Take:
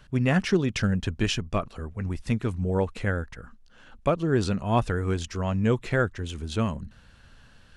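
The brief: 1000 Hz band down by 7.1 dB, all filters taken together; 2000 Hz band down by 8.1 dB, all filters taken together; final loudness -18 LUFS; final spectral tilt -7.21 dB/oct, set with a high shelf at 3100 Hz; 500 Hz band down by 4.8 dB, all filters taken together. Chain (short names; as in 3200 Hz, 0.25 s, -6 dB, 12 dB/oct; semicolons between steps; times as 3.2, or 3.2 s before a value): bell 500 Hz -4.5 dB; bell 1000 Hz -5.5 dB; bell 2000 Hz -7 dB; high shelf 3100 Hz -4.5 dB; gain +11 dB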